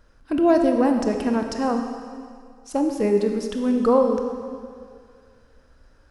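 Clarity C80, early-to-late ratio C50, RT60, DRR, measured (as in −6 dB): 6.5 dB, 5.5 dB, 2.1 s, 4.0 dB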